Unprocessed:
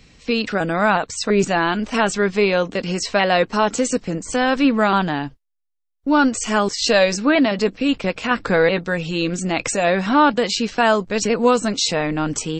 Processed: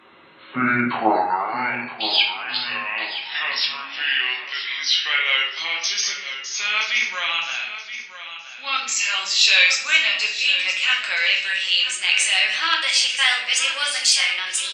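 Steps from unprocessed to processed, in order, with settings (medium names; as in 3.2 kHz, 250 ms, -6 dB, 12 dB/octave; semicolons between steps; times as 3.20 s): gliding tape speed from 50% -> 121%; simulated room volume 110 m³, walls mixed, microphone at 0.97 m; Chebyshev shaper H 4 -25 dB, 6 -45 dB, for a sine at 5.5 dBFS; high-pass sweep 360 Hz -> 2.6 kHz, 0.88–1.77 s; on a send: feedback delay 974 ms, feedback 31%, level -12 dB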